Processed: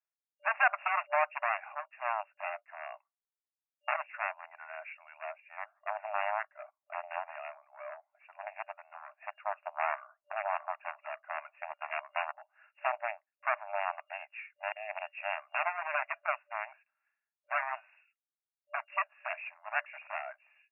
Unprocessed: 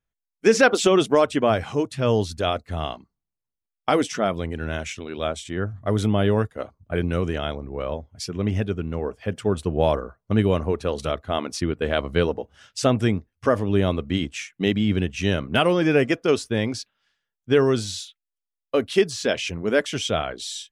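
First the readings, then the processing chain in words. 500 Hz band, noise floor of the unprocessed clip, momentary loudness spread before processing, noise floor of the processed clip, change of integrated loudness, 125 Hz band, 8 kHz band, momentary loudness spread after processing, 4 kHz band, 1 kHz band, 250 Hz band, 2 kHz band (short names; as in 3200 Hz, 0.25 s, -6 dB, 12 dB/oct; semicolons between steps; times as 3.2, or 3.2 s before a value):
-19.0 dB, under -85 dBFS, 11 LU, under -85 dBFS, -13.0 dB, under -40 dB, under -40 dB, 14 LU, under -20 dB, -5.0 dB, under -40 dB, -5.5 dB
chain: added harmonics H 3 -16 dB, 7 -15 dB, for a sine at -5 dBFS; FFT band-pass 590–2800 Hz; gain -6 dB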